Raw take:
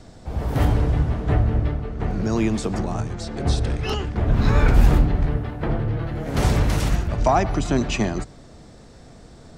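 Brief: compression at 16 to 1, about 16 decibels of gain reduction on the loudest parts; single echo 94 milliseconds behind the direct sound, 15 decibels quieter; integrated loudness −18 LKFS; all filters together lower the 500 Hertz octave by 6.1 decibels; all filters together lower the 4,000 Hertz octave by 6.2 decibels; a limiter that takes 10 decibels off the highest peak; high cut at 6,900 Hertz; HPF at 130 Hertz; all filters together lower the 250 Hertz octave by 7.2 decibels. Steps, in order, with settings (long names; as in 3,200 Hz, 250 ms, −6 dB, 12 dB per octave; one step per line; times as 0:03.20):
high-pass filter 130 Hz
low-pass filter 6,900 Hz
parametric band 250 Hz −7.5 dB
parametric band 500 Hz −6 dB
parametric band 4,000 Hz −8 dB
downward compressor 16 to 1, threshold −33 dBFS
brickwall limiter −31 dBFS
single-tap delay 94 ms −15 dB
level +22.5 dB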